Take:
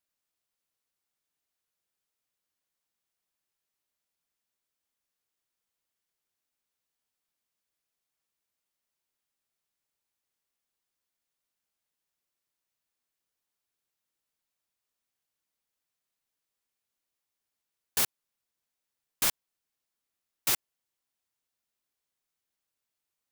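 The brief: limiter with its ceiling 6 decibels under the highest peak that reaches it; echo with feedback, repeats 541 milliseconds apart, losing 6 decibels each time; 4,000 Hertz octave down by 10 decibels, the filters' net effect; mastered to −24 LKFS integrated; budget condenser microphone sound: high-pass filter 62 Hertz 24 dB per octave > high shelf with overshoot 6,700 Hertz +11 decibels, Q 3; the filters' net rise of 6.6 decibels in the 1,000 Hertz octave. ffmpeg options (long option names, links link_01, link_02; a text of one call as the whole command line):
ffmpeg -i in.wav -af "equalizer=frequency=1000:width_type=o:gain=9,equalizer=frequency=4000:width_type=o:gain=-8.5,alimiter=limit=-19dB:level=0:latency=1,highpass=frequency=62:width=0.5412,highpass=frequency=62:width=1.3066,highshelf=frequency=6700:width_type=q:width=3:gain=11,aecho=1:1:541|1082|1623|2164|2705|3246:0.501|0.251|0.125|0.0626|0.0313|0.0157" out.wav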